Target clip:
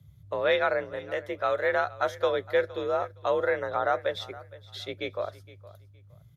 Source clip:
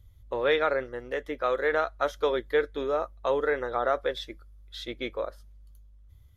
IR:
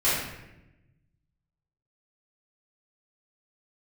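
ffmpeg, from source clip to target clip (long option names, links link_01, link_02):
-af "afreqshift=50,aecho=1:1:465|930:0.112|0.0258"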